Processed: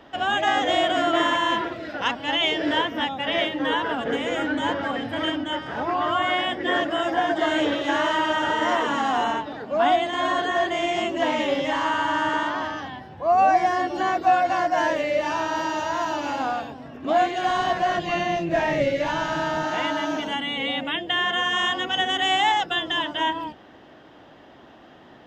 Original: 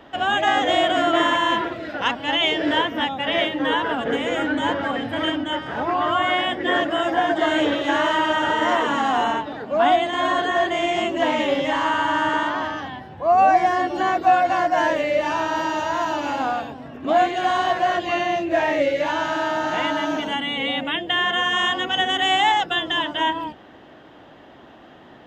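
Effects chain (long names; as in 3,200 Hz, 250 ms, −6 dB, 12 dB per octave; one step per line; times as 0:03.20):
0:17.47–0:19.64: sub-octave generator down 1 octave, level −1 dB
parametric band 5,300 Hz +4.5 dB 0.49 octaves
level −2.5 dB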